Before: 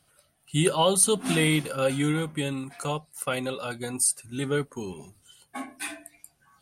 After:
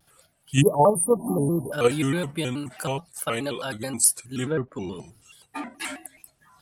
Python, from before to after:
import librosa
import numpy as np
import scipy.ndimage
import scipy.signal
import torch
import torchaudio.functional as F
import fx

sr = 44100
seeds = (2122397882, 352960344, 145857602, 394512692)

p1 = fx.spec_erase(x, sr, start_s=0.61, length_s=1.11, low_hz=1100.0, high_hz=9700.0)
p2 = fx.env_lowpass_down(p1, sr, base_hz=1300.0, full_db=-24.0, at=(4.44, 5.85))
p3 = fx.level_steps(p2, sr, step_db=22)
p4 = p2 + (p3 * librosa.db_to_amplitude(0.5))
y = fx.vibrato_shape(p4, sr, shape='square', rate_hz=4.7, depth_cents=160.0)